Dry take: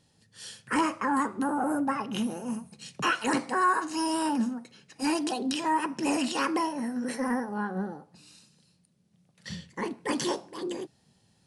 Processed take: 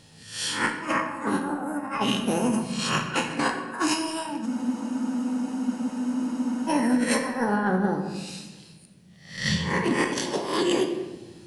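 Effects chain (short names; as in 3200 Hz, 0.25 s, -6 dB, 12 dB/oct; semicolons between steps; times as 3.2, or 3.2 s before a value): spectral swells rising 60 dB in 0.49 s; bell 2400 Hz +3.5 dB 1.2 oct; negative-ratio compressor -32 dBFS, ratio -0.5; on a send at -5 dB: reverb RT60 1.2 s, pre-delay 3 ms; on the sum: spectral freeze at 4.49, 2.18 s; gain +5.5 dB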